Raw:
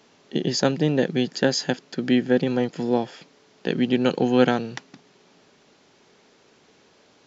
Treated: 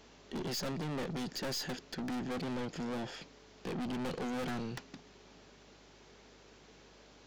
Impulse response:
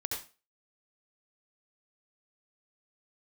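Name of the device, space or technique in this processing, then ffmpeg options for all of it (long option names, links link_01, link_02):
valve amplifier with mains hum: -af "aeval=exprs='(tanh(50.1*val(0)+0.25)-tanh(0.25))/50.1':channel_layout=same,aeval=exprs='val(0)+0.000631*(sin(2*PI*50*n/s)+sin(2*PI*2*50*n/s)/2+sin(2*PI*3*50*n/s)/3+sin(2*PI*4*50*n/s)/4+sin(2*PI*5*50*n/s)/5)':channel_layout=same,volume=-1.5dB"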